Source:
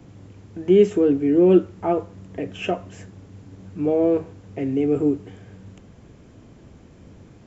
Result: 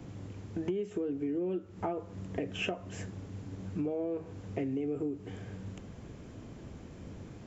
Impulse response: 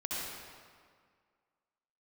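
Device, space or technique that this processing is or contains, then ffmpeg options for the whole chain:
serial compression, leveller first: -af "acompressor=threshold=0.1:ratio=2,acompressor=threshold=0.0282:ratio=10"

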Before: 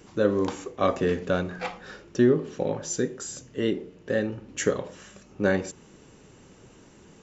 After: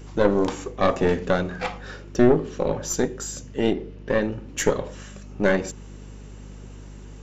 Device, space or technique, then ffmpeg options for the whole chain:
valve amplifier with mains hum: -filter_complex "[0:a]asettb=1/sr,asplit=3[s0][s1][s2];[s0]atrim=end=3.734[s3];[s1]atrim=start=3.73:end=4.22,asetpts=PTS-STARTPTS,afade=t=in:d=0.004:c=qsin,afade=t=out:st=0.486:d=0.004:c=qsin,lowpass=f=5900:w=0.5412,lowpass=f=5900:w=1.3066[s4];[s2]atrim=start=4.216[s5];[s3][s4]acrossfade=d=0.004:c1=hsin:c2=qsin[s6];[s6][s5]acrossfade=d=0.004:c1=qsin:c2=hsin,aeval=exprs='(tanh(6.31*val(0)+0.7)-tanh(0.7))/6.31':c=same,aeval=exprs='val(0)+0.00447*(sin(2*PI*50*n/s)+sin(2*PI*2*50*n/s)/2+sin(2*PI*3*50*n/s)/3+sin(2*PI*4*50*n/s)/4+sin(2*PI*5*50*n/s)/5)':c=same,volume=2.37"

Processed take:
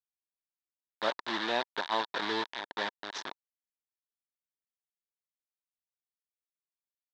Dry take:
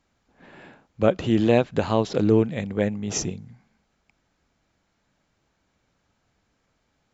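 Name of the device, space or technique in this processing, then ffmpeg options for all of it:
hand-held game console: -af "acrusher=bits=3:mix=0:aa=0.000001,highpass=480,equalizer=f=490:t=q:w=4:g=-8,equalizer=f=950:t=q:w=4:g=9,equalizer=f=1700:t=q:w=4:g=8,equalizer=f=2500:t=q:w=4:g=-4,equalizer=f=3700:t=q:w=4:g=10,lowpass=f=4700:w=0.5412,lowpass=f=4700:w=1.3066,volume=0.355"

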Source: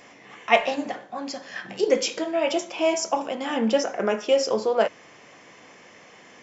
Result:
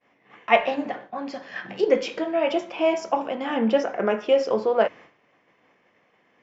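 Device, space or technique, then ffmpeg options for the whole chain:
hearing-loss simulation: -filter_complex "[0:a]asettb=1/sr,asplit=3[s0][s1][s2];[s0]atrim=end=1.324[s3];[s1]atrim=start=1.32:end=1.85,asetpts=PTS-STARTPTS,afade=t=in:d=0.004:c=qsin,afade=t=out:st=0.526:d=0.004:c=qsin,equalizer=f=5300:w=0.72:g=3[s4];[s2]atrim=start=1.846[s5];[s3][s4]acrossfade=d=0.004:c1=hsin:c2=qsin[s6];[s6][s5]acrossfade=d=0.004:c1=qsin:c2=hsin,lowpass=2800,agate=range=0.0224:threshold=0.01:ratio=3:detection=peak,volume=1.12"

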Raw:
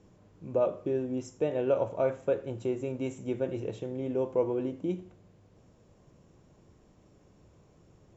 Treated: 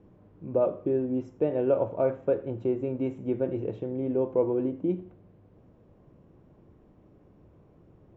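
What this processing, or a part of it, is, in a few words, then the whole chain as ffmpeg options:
phone in a pocket: -af "lowpass=3400,equalizer=f=300:t=o:w=0.77:g=3,highshelf=f=2100:g=-11,volume=1.33"

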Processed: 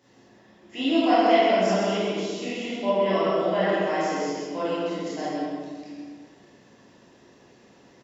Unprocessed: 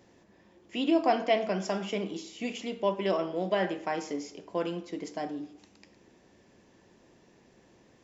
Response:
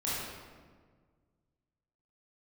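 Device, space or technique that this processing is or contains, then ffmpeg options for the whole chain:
PA in a hall: -filter_complex "[0:a]asettb=1/sr,asplit=3[s0][s1][s2];[s0]atrim=end=2.444[s3];[s1]atrim=start=2.44:end=3.62,asetpts=PTS-STARTPTS,afade=t=in:d=0.004:c=qsin,afade=t=out:st=1.176:d=0.004:c=qsin,acrossover=split=2900[s4][s5];[s5]acompressor=threshold=0.00398:ratio=4:attack=1:release=60[s6];[s4][s6]amix=inputs=2:normalize=0[s7];[s2]atrim=start=3.616[s8];[s3][s7]acrossfade=d=0.004:c1=hsin:c2=qsin[s9];[s9][s8]acrossfade=d=0.004:c1=qsin:c2=hsin,highpass=f=150:p=1,equalizer=f=3400:t=o:w=3:g=4,aecho=1:1:132:0.562[s10];[1:a]atrim=start_sample=2205[s11];[s10][s11]afir=irnorm=-1:irlink=0,bandreject=f=2300:w=16,volume=0.794"

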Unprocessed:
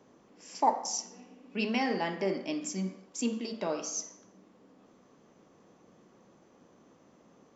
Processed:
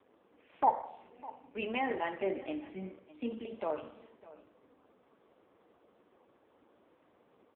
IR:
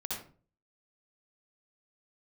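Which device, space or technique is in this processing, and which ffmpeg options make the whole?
satellite phone: -af "highpass=330,lowpass=3200,aecho=1:1:605:0.112" -ar 8000 -c:a libopencore_amrnb -b:a 5150

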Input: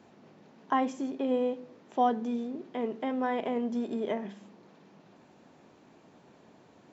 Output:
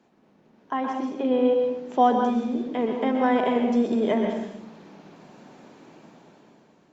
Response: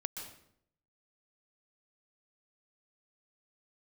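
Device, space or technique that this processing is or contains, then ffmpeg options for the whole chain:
far-field microphone of a smart speaker: -filter_complex "[0:a]asettb=1/sr,asplit=3[s0][s1][s2];[s0]atrim=end=0.774[s3];[s1]atrim=start=0.77:end=1.59,asetpts=PTS-STARTPTS,afade=t=in:d=0.004:c=qsin,afade=t=out:st=0.816:d=0.004:c=qsin,lowpass=f=5900:w=0.5412,lowpass=f=5900:w=1.3066[s4];[s2]atrim=start=1.586[s5];[s3][s4]acrossfade=d=0.004:c1=hsin:c2=qsin[s6];[s6][s5]acrossfade=d=0.004:c1=qsin:c2=hsin[s7];[1:a]atrim=start_sample=2205[s8];[s7][s8]afir=irnorm=-1:irlink=0,highpass=f=120:w=0.5412,highpass=f=120:w=1.3066,dynaudnorm=f=230:g=9:m=4.47,volume=0.668" -ar 48000 -c:a libopus -b:a 48k

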